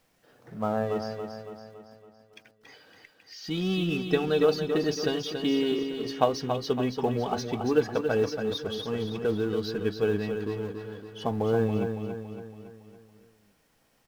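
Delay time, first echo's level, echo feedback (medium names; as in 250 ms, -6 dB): 280 ms, -7.0 dB, 51%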